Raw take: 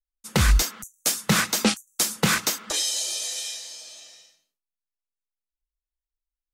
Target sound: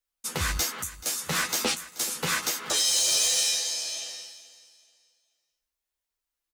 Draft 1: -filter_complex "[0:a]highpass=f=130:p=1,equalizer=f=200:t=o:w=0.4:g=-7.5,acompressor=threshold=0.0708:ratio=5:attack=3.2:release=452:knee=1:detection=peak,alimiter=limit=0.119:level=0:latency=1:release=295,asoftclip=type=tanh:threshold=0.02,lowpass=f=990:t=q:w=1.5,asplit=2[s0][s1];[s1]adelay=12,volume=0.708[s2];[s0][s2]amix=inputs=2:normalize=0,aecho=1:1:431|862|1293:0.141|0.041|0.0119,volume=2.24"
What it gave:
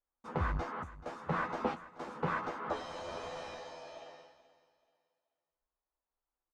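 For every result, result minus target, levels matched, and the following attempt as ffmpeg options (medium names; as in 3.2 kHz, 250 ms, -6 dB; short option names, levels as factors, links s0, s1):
1 kHz band +13.0 dB; saturation: distortion +7 dB
-filter_complex "[0:a]highpass=f=130:p=1,equalizer=f=200:t=o:w=0.4:g=-7.5,acompressor=threshold=0.0708:ratio=5:attack=3.2:release=452:knee=1:detection=peak,alimiter=limit=0.119:level=0:latency=1:release=295,asoftclip=type=tanh:threshold=0.02,asplit=2[s0][s1];[s1]adelay=12,volume=0.708[s2];[s0][s2]amix=inputs=2:normalize=0,aecho=1:1:431|862|1293:0.141|0.041|0.0119,volume=2.24"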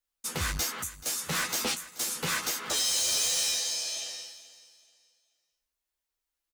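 saturation: distortion +7 dB
-filter_complex "[0:a]highpass=f=130:p=1,equalizer=f=200:t=o:w=0.4:g=-7.5,acompressor=threshold=0.0708:ratio=5:attack=3.2:release=452:knee=1:detection=peak,alimiter=limit=0.119:level=0:latency=1:release=295,asoftclip=type=tanh:threshold=0.0447,asplit=2[s0][s1];[s1]adelay=12,volume=0.708[s2];[s0][s2]amix=inputs=2:normalize=0,aecho=1:1:431|862|1293:0.141|0.041|0.0119,volume=2.24"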